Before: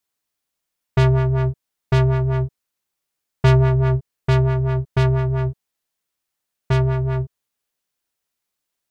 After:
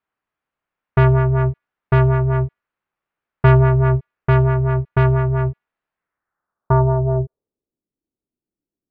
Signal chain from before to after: resonant high shelf 1900 Hz -9.5 dB, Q 1.5; thin delay 73 ms, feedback 35%, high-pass 4500 Hz, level -17 dB; low-pass sweep 2600 Hz -> 310 Hz, 5.91–7.75; gain +2 dB

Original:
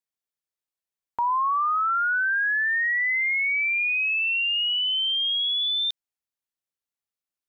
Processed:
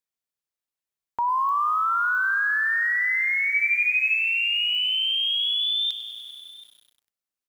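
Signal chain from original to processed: 3.48–4.14 doubler 22 ms -4 dB; echo 0.729 s -20.5 dB; pops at 1.49/2.15/4.75, -28 dBFS; lo-fi delay 98 ms, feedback 80%, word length 8-bit, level -13 dB

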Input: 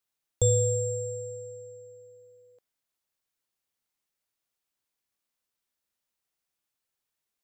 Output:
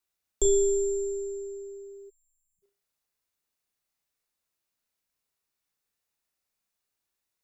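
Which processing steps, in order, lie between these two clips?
frequency shift -95 Hz; notch 3200 Hz, Q 18; flutter echo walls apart 6 m, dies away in 0.31 s; spectral delete 2.1–2.63, 200–6400 Hz

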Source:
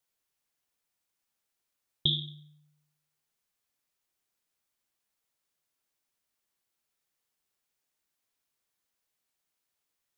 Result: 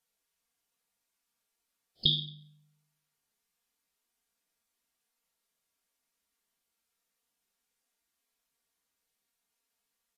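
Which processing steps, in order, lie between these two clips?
comb 4.3 ms, depth 35%; harmoniser +5 st -17 dB; WMA 32 kbps 32000 Hz

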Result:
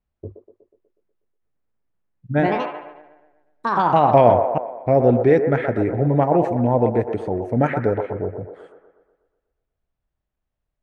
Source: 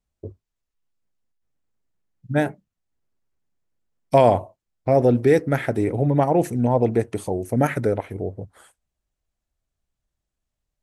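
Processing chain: LPF 2500 Hz 12 dB/oct; band-limited delay 0.122 s, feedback 54%, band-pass 790 Hz, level -5.5 dB; 2.31–4.91 echoes that change speed 84 ms, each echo +3 st, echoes 3; gain +1 dB

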